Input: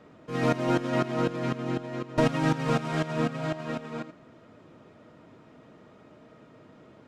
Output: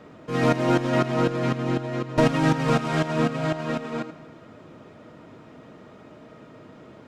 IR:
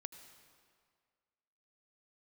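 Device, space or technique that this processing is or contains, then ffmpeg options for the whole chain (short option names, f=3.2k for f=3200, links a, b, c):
saturated reverb return: -filter_complex "[0:a]asplit=2[a][b];[1:a]atrim=start_sample=2205[c];[b][c]afir=irnorm=-1:irlink=0,asoftclip=type=tanh:threshold=-32.5dB,volume=0dB[d];[a][d]amix=inputs=2:normalize=0,volume=2.5dB"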